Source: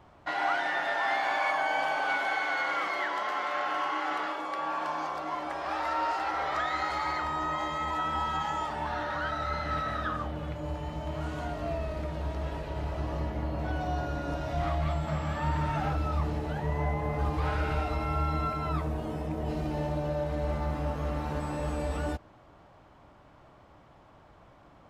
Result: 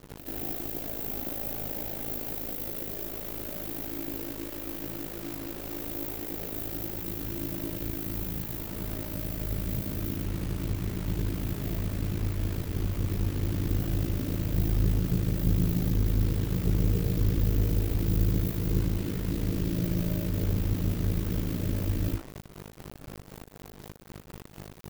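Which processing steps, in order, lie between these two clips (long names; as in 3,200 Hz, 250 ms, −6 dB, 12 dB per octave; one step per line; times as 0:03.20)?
each half-wave held at its own peak
inverse Chebyshev band-stop filter 1,700–5,000 Hz, stop band 80 dB
high-shelf EQ 4,500 Hz +5.5 dB
mains-hum notches 60/120/180/240/300/360/420/480 Hz
mains hum 50 Hz, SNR 17 dB
bit reduction 7 bits
ring modulation 27 Hz
backwards echo 86 ms −10.5 dB
level +3 dB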